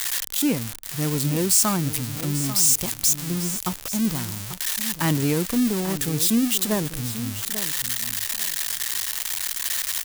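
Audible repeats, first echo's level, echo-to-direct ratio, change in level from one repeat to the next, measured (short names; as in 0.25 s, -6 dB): 2, -12.5 dB, -12.5 dB, -15.5 dB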